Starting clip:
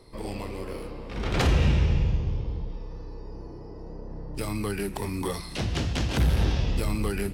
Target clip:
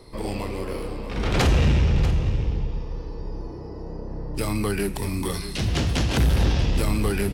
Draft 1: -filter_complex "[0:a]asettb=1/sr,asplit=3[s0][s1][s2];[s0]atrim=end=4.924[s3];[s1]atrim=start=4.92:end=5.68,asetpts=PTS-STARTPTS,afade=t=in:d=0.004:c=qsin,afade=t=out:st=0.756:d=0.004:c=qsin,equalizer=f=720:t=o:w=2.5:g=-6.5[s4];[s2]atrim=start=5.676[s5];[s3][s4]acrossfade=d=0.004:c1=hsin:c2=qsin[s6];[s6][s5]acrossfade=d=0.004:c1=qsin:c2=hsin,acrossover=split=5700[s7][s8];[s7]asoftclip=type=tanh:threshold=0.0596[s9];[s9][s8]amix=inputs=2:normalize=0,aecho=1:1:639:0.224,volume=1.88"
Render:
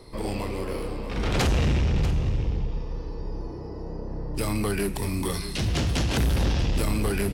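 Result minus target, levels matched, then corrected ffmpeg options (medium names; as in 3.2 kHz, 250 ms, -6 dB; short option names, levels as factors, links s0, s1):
saturation: distortion +7 dB
-filter_complex "[0:a]asettb=1/sr,asplit=3[s0][s1][s2];[s0]atrim=end=4.924[s3];[s1]atrim=start=4.92:end=5.68,asetpts=PTS-STARTPTS,afade=t=in:d=0.004:c=qsin,afade=t=out:st=0.756:d=0.004:c=qsin,equalizer=f=720:t=o:w=2.5:g=-6.5[s4];[s2]atrim=start=5.676[s5];[s3][s4]acrossfade=d=0.004:c1=hsin:c2=qsin[s6];[s6][s5]acrossfade=d=0.004:c1=qsin:c2=hsin,acrossover=split=5700[s7][s8];[s7]asoftclip=type=tanh:threshold=0.126[s9];[s9][s8]amix=inputs=2:normalize=0,aecho=1:1:639:0.224,volume=1.88"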